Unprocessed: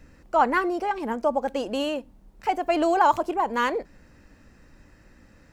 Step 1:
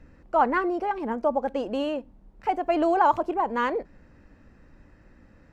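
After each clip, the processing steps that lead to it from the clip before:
low-pass filter 1,700 Hz 6 dB per octave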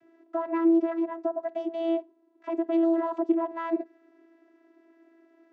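brickwall limiter −21 dBFS, peak gain reduction 12 dB
channel vocoder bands 16, saw 331 Hz
level +3.5 dB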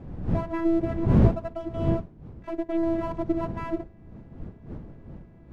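gain on one half-wave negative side −7 dB
wind on the microphone 180 Hz −29 dBFS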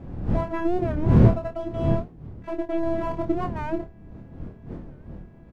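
on a send: ambience of single reflections 26 ms −5 dB, 52 ms −17.5 dB
on the sum: wow of a warped record 45 rpm, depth 160 cents
level +1.5 dB

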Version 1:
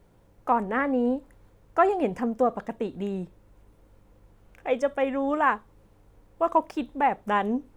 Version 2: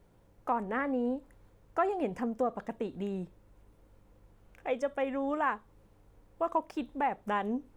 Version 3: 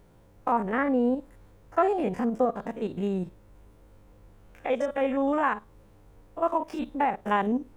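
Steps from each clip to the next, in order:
downward compressor 1.5 to 1, threshold −28 dBFS, peak gain reduction 5 dB; level −4 dB
spectrum averaged block by block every 50 ms; level +7.5 dB

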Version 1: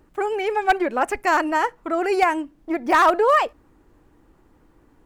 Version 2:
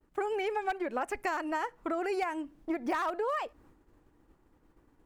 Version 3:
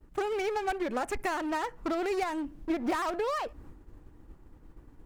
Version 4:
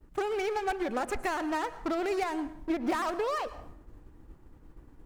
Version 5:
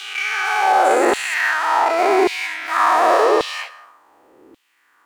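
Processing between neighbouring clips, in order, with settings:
downward expander −49 dBFS; downward compressor 10 to 1, threshold −26 dBFS, peak gain reduction 14 dB; level −3 dB
low-shelf EQ 180 Hz +11.5 dB; in parallel at −3.5 dB: wave folding −37 dBFS
convolution reverb RT60 0.70 s, pre-delay 97 ms, DRR 14.5 dB
every bin's largest magnitude spread in time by 480 ms; auto-filter high-pass saw down 0.88 Hz 330–3,400 Hz; level +4 dB

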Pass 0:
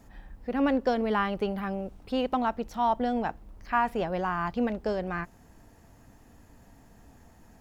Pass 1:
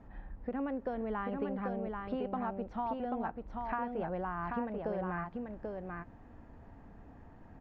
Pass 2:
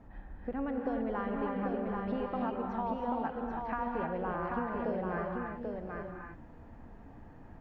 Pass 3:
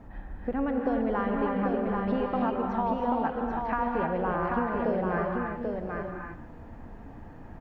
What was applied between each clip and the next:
low-pass filter 1,700 Hz 12 dB per octave; downward compressor, threshold −34 dBFS, peak gain reduction 12.5 dB; single-tap delay 787 ms −4 dB
reverb whose tail is shaped and stops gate 340 ms rising, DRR 1.5 dB
single-tap delay 149 ms −16.5 dB; level +6.5 dB

